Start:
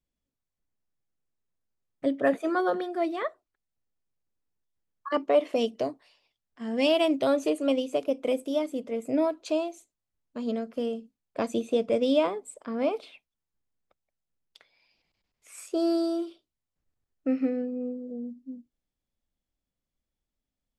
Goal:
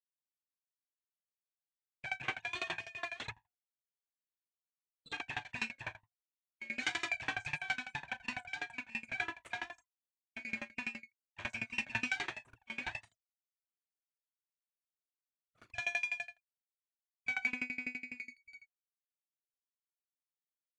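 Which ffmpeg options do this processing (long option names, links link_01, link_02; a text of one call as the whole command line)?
ffmpeg -i in.wav -filter_complex "[0:a]afftfilt=real='real(if(lt(b,1008),b+24*(1-2*mod(floor(b/24),2)),b),0)':imag='imag(if(lt(b,1008),b+24*(1-2*mod(floor(b/24),2)),b),0)':win_size=2048:overlap=0.75,bandreject=frequency=50:width_type=h:width=6,bandreject=frequency=100:width_type=h:width=6,bandreject=frequency=150:width_type=h:width=6,bandreject=frequency=200:width_type=h:width=6,bandreject=frequency=250:width_type=h:width=6,agate=range=-41dB:threshold=-46dB:ratio=16:detection=peak,bandreject=frequency=2400:width=21,afftfilt=real='re*gte(hypot(re,im),0.00891)':imag='im*gte(hypot(re,im),0.00891)':win_size=1024:overlap=0.75,equalizer=frequency=400:width=0.35:gain=-4.5,acrossover=split=280[link_01][link_02];[link_01]alimiter=level_in=2dB:limit=-24dB:level=0:latency=1:release=367,volume=-2dB[link_03];[link_03][link_02]amix=inputs=2:normalize=0,afreqshift=360,aeval=exprs='abs(val(0))':channel_layout=same,highpass=110,equalizer=frequency=110:width_type=q:width=4:gain=8,equalizer=frequency=190:width_type=q:width=4:gain=-8,equalizer=frequency=480:width_type=q:width=4:gain=-4,equalizer=frequency=810:width_type=q:width=4:gain=-7,equalizer=frequency=2200:width_type=q:width=4:gain=6,equalizer=frequency=5000:width_type=q:width=4:gain=-9,lowpass=frequency=7500:width=0.5412,lowpass=frequency=7500:width=1.3066,asplit=2[link_04][link_05];[link_05]adelay=36,volume=-3.5dB[link_06];[link_04][link_06]amix=inputs=2:normalize=0,aeval=exprs='val(0)*pow(10,-25*if(lt(mod(12*n/s,1),2*abs(12)/1000),1-mod(12*n/s,1)/(2*abs(12)/1000),(mod(12*n/s,1)-2*abs(12)/1000)/(1-2*abs(12)/1000))/20)':channel_layout=same,volume=1dB" out.wav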